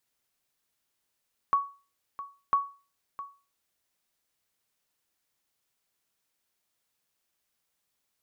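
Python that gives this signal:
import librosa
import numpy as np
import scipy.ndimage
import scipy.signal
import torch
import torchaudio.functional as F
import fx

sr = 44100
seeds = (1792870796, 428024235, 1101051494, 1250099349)

y = fx.sonar_ping(sr, hz=1120.0, decay_s=0.34, every_s=1.0, pings=2, echo_s=0.66, echo_db=-15.0, level_db=-16.5)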